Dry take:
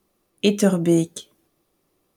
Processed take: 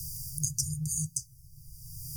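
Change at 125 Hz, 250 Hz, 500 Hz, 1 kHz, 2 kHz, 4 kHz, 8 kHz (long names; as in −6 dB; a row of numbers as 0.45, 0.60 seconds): −8.5 dB, below −20 dB, below −40 dB, below −40 dB, below −40 dB, −12.5 dB, +4.0 dB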